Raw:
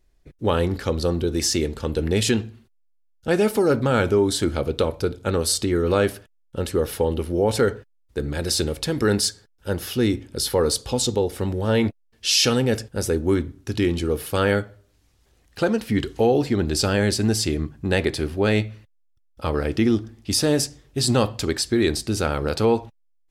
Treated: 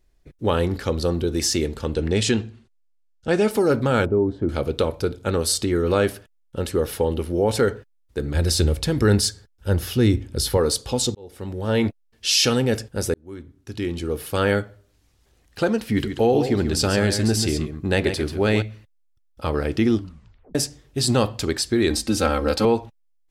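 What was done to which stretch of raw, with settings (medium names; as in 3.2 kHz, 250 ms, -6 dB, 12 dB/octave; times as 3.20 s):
1.88–3.51 s: low-pass 9 kHz 24 dB/octave
4.05–4.49 s: Bessel low-pass 570 Hz
8.34–10.57 s: peaking EQ 67 Hz +11.5 dB 1.9 oct
11.15–11.82 s: fade in
13.14–14.47 s: fade in
15.83–18.62 s: delay 138 ms -8.5 dB
19.97 s: tape stop 0.58 s
21.90–22.65 s: comb 3.8 ms, depth 94%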